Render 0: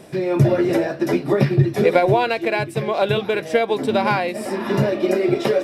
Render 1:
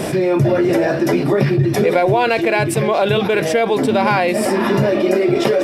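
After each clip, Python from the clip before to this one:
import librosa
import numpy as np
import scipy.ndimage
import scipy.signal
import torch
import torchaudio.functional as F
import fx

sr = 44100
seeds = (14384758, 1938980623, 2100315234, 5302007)

y = fx.notch(x, sr, hz=3900.0, q=21.0)
y = fx.env_flatten(y, sr, amount_pct=70)
y = y * librosa.db_to_amplitude(-2.0)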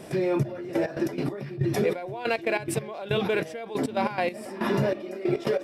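y = fx.step_gate(x, sr, bpm=140, pattern='.xxx...x.x.x..', floor_db=-12.0, edge_ms=4.5)
y = y * librosa.db_to_amplitude(-9.0)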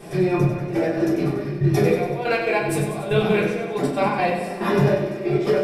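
y = fx.echo_feedback(x, sr, ms=95, feedback_pct=59, wet_db=-7.5)
y = fx.room_shoebox(y, sr, seeds[0], volume_m3=140.0, walls='furnished', distance_m=3.6)
y = y * librosa.db_to_amplitude(-3.5)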